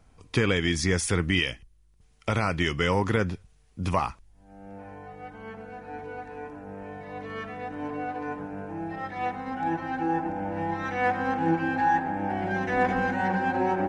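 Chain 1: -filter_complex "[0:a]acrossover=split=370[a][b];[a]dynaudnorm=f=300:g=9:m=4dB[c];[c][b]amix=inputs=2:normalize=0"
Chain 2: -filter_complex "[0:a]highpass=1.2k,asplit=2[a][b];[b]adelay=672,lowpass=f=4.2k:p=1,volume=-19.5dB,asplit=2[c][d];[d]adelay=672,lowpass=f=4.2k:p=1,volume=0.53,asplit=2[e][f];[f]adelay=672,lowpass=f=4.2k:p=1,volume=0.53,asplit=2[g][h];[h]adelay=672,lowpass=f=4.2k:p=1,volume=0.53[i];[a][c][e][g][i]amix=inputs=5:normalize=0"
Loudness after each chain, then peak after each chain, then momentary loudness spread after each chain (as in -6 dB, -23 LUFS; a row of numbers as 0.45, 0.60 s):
-26.5, -33.0 LUFS; -8.5, -13.5 dBFS; 16, 21 LU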